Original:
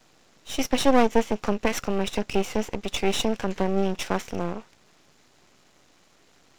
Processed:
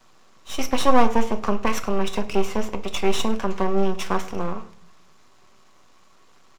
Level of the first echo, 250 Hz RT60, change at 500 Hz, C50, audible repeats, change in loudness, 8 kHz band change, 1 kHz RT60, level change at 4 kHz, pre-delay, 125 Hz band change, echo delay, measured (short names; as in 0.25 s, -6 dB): -21.0 dB, 0.80 s, +1.0 dB, 14.5 dB, 1, +1.5 dB, -0.5 dB, 0.45 s, 0.0 dB, 5 ms, +1.0 dB, 0.103 s